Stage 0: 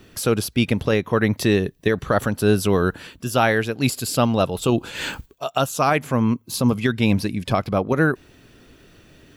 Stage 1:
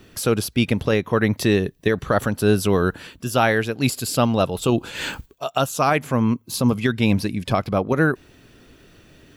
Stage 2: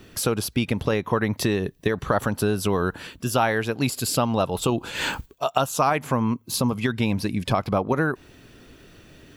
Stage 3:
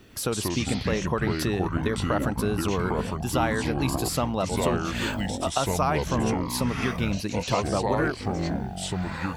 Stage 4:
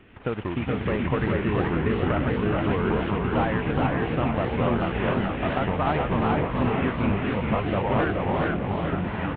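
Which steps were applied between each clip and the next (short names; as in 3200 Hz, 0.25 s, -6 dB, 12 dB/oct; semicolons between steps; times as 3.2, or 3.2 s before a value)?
nothing audible
compressor, threshold -20 dBFS, peak gain reduction 8.5 dB; dynamic EQ 940 Hz, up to +6 dB, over -42 dBFS, Q 1.9; gain +1 dB
echoes that change speed 99 ms, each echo -5 st, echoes 3; gain -4.5 dB
CVSD 16 kbps; echo 0.423 s -4 dB; warbling echo 0.44 s, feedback 47%, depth 180 cents, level -5 dB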